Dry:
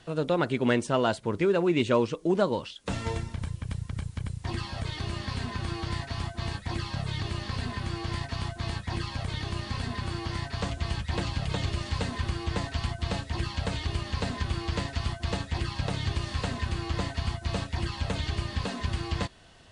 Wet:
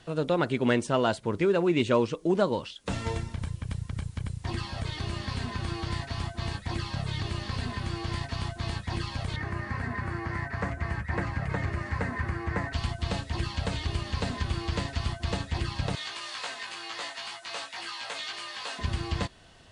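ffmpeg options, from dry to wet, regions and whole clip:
-filter_complex "[0:a]asettb=1/sr,asplit=3[s0][s1][s2];[s0]atrim=end=9.364[s3];[s1]atrim=start=9.36:end=12.73,asetpts=PTS-STARTPTS,afade=t=in:d=0.004:c=qsin,afade=t=out:st=3.366:d=0.004:c=qsin,highpass=58,highshelf=f=2500:t=q:w=3:g=-9.5[s4];[s2]atrim=start=12.726[s5];[s3][s4]acrossfade=d=0.004:c1=hsin:c2=qsin[s6];[s6][s5]acrossfade=d=0.004:c1=qsin:c2=hsin,asettb=1/sr,asplit=3[s7][s8][s9];[s7]atrim=end=15.954[s10];[s8]atrim=start=15.95:end=18.79,asetpts=PTS-STARTPTS,afade=t=in:d=0.004:c=qsin,afade=t=out:st=2.836:d=0.004:c=qsin,highpass=890,asplit=2[s11][s12];[s12]adelay=18,volume=0.794[s13];[s11][s13]amix=inputs=2:normalize=0,atrim=end_sample=125244[s14];[s9]atrim=start=18.786[s15];[s10][s14]acrossfade=d=0.004:c1=hsin:c2=qsin[s16];[s16][s15]acrossfade=d=0.004:c1=qsin:c2=hsin"

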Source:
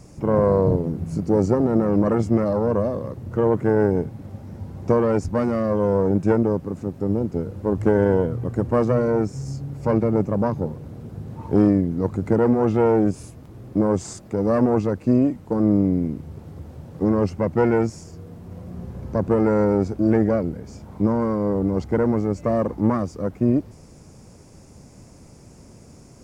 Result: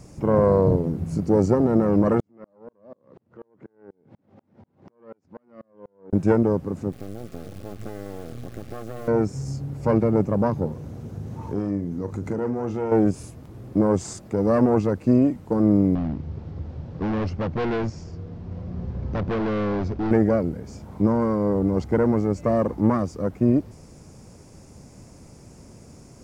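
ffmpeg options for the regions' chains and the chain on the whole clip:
-filter_complex "[0:a]asettb=1/sr,asplit=3[s0][s1][s2];[s0]atrim=end=2.204[s3];[s1]atrim=start=2.2:end=6.13,asetpts=PTS-STARTPTS,afade=t=in:d=0.004:c=qsin,afade=t=out:st=3.926:d=0.004:c=qsin,acompressor=threshold=0.0224:ratio=8:attack=3.2:release=140:knee=1:detection=peak,highpass=200,lowpass=3400,aeval=exprs='val(0)*pow(10,-37*if(lt(mod(-4.1*n/s,1),2*abs(-4.1)/1000),1-mod(-4.1*n/s,1)/(2*abs(-4.1)/1000),(mod(-4.1*n/s,1)-2*abs(-4.1)/1000)/(1-2*abs(-4.1)/1000))/20)':c=same[s4];[s2]atrim=start=6.126[s5];[s3][s4]acrossfade=d=0.004:c1=hsin:c2=qsin[s6];[s6][s5]acrossfade=d=0.004:c1=qsin:c2=hsin,asettb=1/sr,asplit=3[s7][s8][s9];[s7]atrim=end=6.924[s10];[s8]atrim=start=6.92:end=9.08,asetpts=PTS-STARTPTS,afade=t=in:d=0.004:c=qsin,afade=t=out:st=2.156:d=0.004:c=qsin,acompressor=threshold=0.0355:ratio=6:attack=3.2:release=140:knee=1:detection=peak,acrusher=bits=5:dc=4:mix=0:aa=0.000001,asuperstop=centerf=950:order=8:qfactor=5.8[s11];[s9]atrim=start=9.076[s12];[s10][s11]acrossfade=d=0.004:c1=hsin:c2=qsin[s13];[s13][s12]acrossfade=d=0.004:c1=qsin:c2=hsin,asettb=1/sr,asplit=3[s14][s15][s16];[s14]atrim=end=10.724[s17];[s15]atrim=start=10.72:end=12.92,asetpts=PTS-STARTPTS,afade=t=in:d=0.004:c=qsin,afade=t=out:st=2.196:d=0.004:c=qsin,equalizer=f=6200:t=o:w=0.36:g=6.5,acompressor=threshold=0.0355:ratio=2:attack=3.2:release=140:knee=1:detection=peak,asplit=2[s18][s19];[s19]adelay=40,volume=0.282[s20];[s18][s20]amix=inputs=2:normalize=0,atrim=end_sample=97020[s21];[s16]atrim=start=12.916[s22];[s17][s21]acrossfade=d=0.004:c1=hsin:c2=qsin[s23];[s23][s22]acrossfade=d=0.004:c1=qsin:c2=hsin,asettb=1/sr,asplit=3[s24][s25][s26];[s24]atrim=end=15.954[s27];[s25]atrim=start=15.95:end=20.11,asetpts=PTS-STARTPTS,afade=t=in:d=0.004:c=qsin,afade=t=out:st=4.156:d=0.004:c=qsin,lowshelf=f=87:g=9.5,volume=13.3,asoftclip=hard,volume=0.075,lowpass=f=5400:w=0.5412,lowpass=f=5400:w=1.3066[s28];[s26]atrim=start=20.106[s29];[s27][s28]acrossfade=d=0.004:c1=hsin:c2=qsin[s30];[s30][s29]acrossfade=d=0.004:c1=qsin:c2=hsin"

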